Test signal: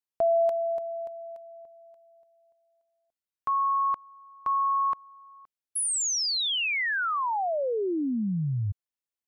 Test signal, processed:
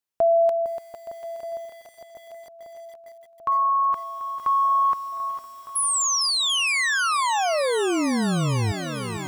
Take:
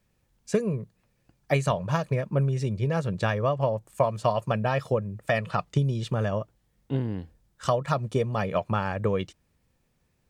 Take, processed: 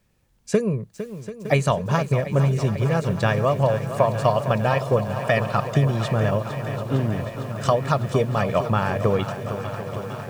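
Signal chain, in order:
on a send: feedback echo with a long and a short gap by turns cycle 1,230 ms, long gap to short 1.5 to 1, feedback 57%, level −15 dB
on the sum: feedback echo at a low word length 456 ms, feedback 80%, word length 8 bits, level −11.5 dB
level +4.5 dB

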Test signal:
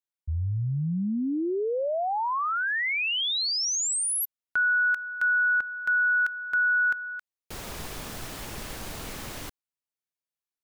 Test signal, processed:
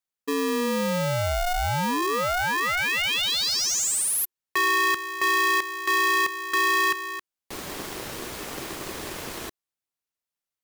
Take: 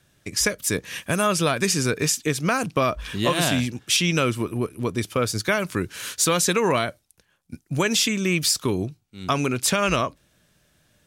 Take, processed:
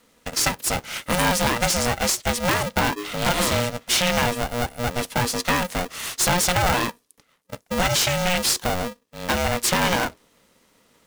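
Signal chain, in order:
asymmetric clip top −24.5 dBFS
ring modulator with a square carrier 360 Hz
level +2.5 dB

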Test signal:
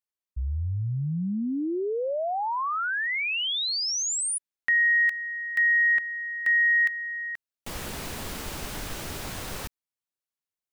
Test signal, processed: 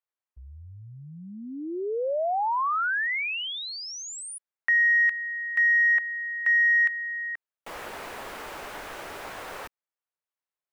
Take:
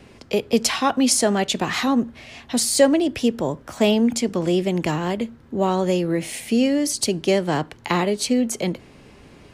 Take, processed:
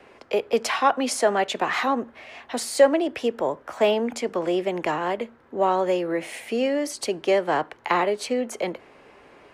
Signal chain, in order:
three-way crossover with the lows and the highs turned down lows −19 dB, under 390 Hz, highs −13 dB, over 2,400 Hz
in parallel at −8 dB: soft clipping −15 dBFS

